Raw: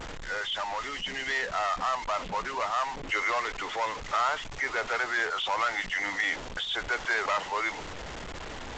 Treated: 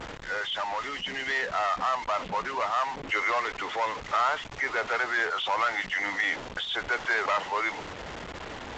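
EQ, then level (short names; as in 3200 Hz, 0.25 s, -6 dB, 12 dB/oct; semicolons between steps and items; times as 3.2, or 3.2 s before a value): HPF 81 Hz 6 dB/oct; high shelf 6500 Hz -10.5 dB; +2.0 dB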